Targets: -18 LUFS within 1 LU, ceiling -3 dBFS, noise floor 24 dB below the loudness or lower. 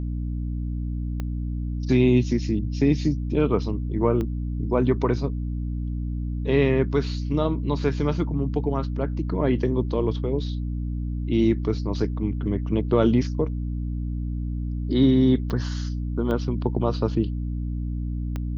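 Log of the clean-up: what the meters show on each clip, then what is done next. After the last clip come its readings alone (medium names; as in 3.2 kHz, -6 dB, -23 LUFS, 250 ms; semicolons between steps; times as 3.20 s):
clicks found 5; hum 60 Hz; highest harmonic 300 Hz; hum level -25 dBFS; loudness -25.0 LUFS; peak level -6.5 dBFS; loudness target -18.0 LUFS
-> de-click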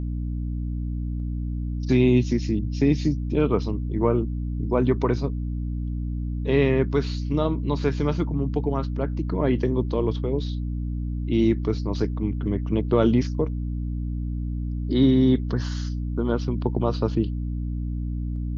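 clicks found 0; hum 60 Hz; highest harmonic 300 Hz; hum level -25 dBFS
-> de-hum 60 Hz, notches 5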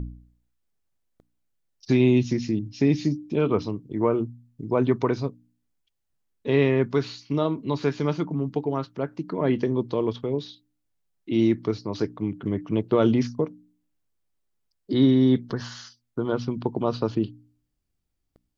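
hum not found; loudness -25.0 LUFS; peak level -7.5 dBFS; loudness target -18.0 LUFS
-> trim +7 dB; peak limiter -3 dBFS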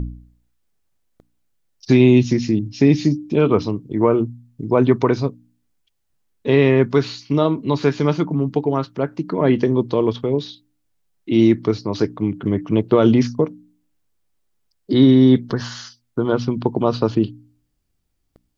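loudness -18.0 LUFS; peak level -3.0 dBFS; noise floor -70 dBFS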